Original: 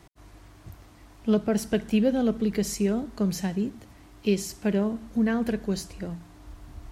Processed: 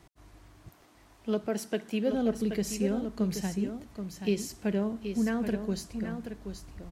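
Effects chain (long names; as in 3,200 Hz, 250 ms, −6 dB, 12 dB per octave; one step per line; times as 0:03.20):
0:00.69–0:02.12: high-pass filter 250 Hz 12 dB per octave
single-tap delay 778 ms −8 dB
level −4.5 dB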